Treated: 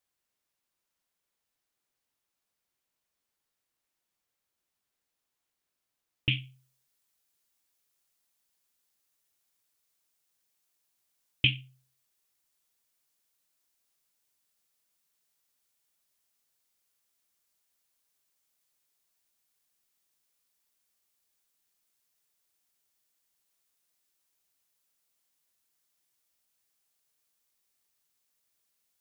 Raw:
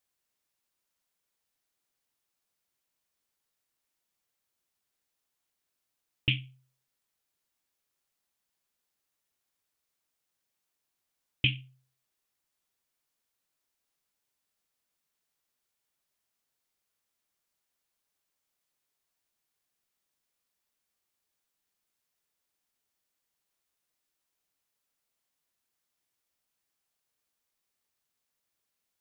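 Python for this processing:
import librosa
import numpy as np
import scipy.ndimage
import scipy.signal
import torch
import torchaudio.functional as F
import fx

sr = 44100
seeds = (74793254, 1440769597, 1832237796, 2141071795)

y = fx.high_shelf(x, sr, hz=3800.0, db=fx.steps((0.0, -2.5), (6.31, 7.0)))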